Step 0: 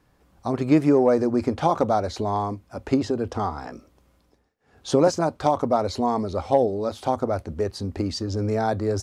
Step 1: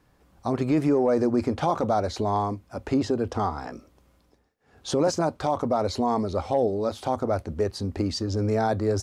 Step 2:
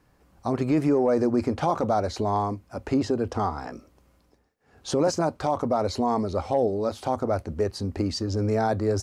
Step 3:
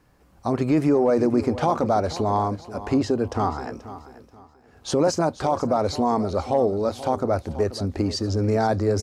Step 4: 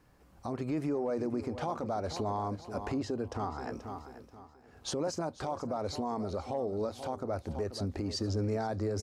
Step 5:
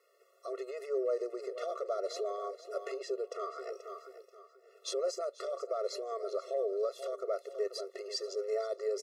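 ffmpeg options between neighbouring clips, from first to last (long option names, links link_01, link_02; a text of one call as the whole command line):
ffmpeg -i in.wav -af "alimiter=limit=-14dB:level=0:latency=1:release=10" out.wav
ffmpeg -i in.wav -af "equalizer=frequency=3500:width=5.8:gain=-4" out.wav
ffmpeg -i in.wav -af "aecho=1:1:483|966|1449:0.178|0.0516|0.015,volume=2.5dB" out.wav
ffmpeg -i in.wav -af "alimiter=limit=-21dB:level=0:latency=1:release=305,volume=-4dB" out.wav
ffmpeg -i in.wav -af "afftfilt=real='re*eq(mod(floor(b*sr/1024/360),2),1)':imag='im*eq(mod(floor(b*sr/1024/360),2),1)':win_size=1024:overlap=0.75,volume=2dB" out.wav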